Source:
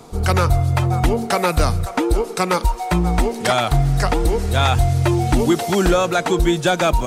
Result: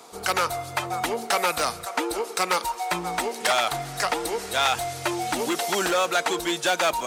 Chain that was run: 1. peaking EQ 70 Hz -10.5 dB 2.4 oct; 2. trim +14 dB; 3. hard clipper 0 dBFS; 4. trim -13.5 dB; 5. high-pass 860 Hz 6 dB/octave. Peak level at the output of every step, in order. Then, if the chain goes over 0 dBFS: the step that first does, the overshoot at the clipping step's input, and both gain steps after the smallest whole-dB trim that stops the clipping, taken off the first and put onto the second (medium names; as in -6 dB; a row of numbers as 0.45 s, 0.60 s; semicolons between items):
-6.0 dBFS, +8.0 dBFS, 0.0 dBFS, -13.5 dBFS, -9.5 dBFS; step 2, 8.0 dB; step 2 +6 dB, step 4 -5.5 dB